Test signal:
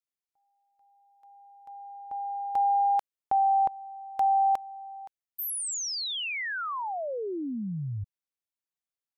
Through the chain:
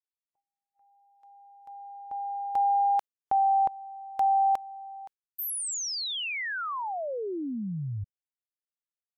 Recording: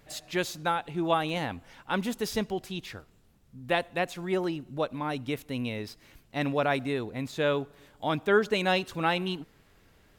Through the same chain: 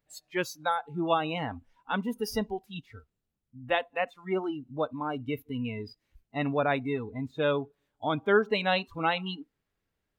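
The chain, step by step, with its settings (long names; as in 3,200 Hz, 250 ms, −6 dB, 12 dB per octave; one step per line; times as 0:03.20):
noise reduction from a noise print of the clip's start 22 dB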